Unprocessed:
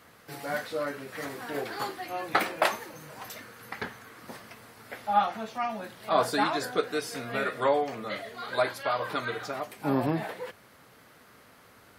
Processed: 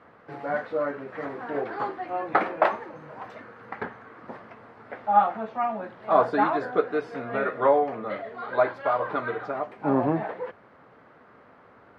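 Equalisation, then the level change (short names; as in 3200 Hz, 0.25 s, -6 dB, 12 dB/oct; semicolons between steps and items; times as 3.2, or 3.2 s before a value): LPF 1300 Hz 12 dB/oct; low shelf 180 Hz -9 dB; +6.0 dB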